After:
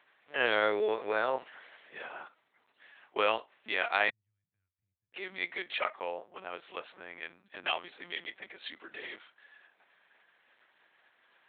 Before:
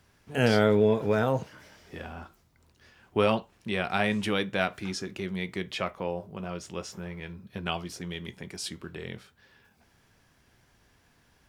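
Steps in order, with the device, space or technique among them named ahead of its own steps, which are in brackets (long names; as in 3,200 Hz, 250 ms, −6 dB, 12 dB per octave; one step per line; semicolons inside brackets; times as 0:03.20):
0:04.09–0:05.14: inverse Chebyshev band-stop filter 270–8,700 Hz, stop band 60 dB
talking toy (linear-prediction vocoder at 8 kHz pitch kept; high-pass filter 630 Hz 12 dB per octave; parametric band 1,900 Hz +4 dB 0.54 octaves)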